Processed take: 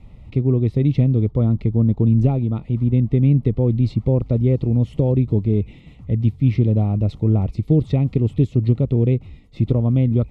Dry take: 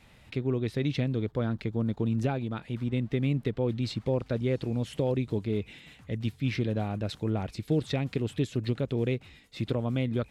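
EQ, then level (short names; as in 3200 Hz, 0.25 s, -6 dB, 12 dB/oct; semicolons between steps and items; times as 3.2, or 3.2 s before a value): Butterworth band-stop 1600 Hz, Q 2.8; tilt -3.5 dB/oct; low shelf 410 Hz +3 dB; +1.0 dB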